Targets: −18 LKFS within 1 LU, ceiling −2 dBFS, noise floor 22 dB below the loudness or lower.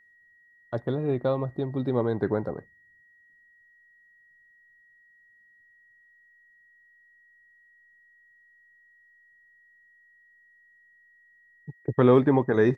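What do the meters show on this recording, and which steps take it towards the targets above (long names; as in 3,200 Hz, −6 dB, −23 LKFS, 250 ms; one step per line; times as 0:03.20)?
interfering tone 1,900 Hz; level of the tone −57 dBFS; integrated loudness −25.5 LKFS; sample peak −7.0 dBFS; target loudness −18.0 LKFS
→ notch filter 1,900 Hz, Q 30
level +7.5 dB
brickwall limiter −2 dBFS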